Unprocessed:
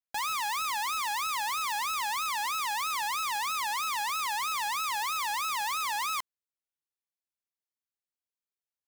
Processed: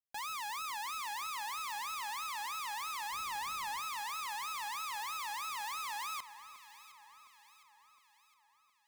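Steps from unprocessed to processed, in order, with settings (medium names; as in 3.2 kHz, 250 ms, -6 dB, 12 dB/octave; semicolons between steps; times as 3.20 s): 3.12–3.80 s: bass shelf 360 Hz +11 dB; echo whose repeats swap between lows and highs 356 ms, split 1.7 kHz, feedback 70%, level -12 dB; trim -9 dB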